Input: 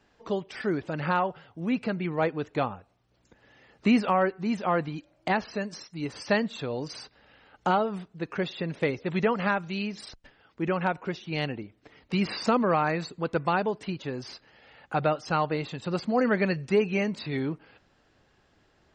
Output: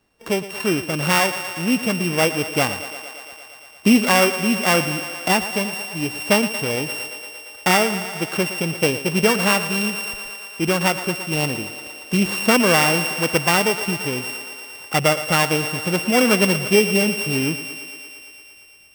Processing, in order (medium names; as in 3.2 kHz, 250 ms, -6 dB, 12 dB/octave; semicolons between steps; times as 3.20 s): sorted samples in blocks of 16 samples; gate -53 dBFS, range -9 dB; thinning echo 115 ms, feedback 81%, high-pass 220 Hz, level -13 dB; trim +7.5 dB